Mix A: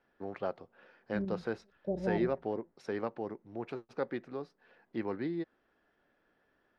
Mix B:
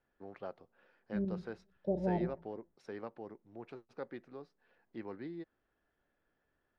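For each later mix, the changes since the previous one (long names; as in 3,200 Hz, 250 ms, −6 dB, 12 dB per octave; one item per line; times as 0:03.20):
first voice −8.5 dB
second voice: send +6.5 dB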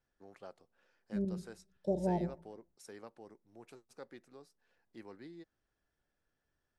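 first voice −7.5 dB
master: remove high-frequency loss of the air 300 metres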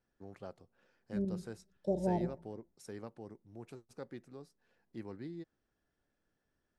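first voice: remove high-pass filter 530 Hz 6 dB per octave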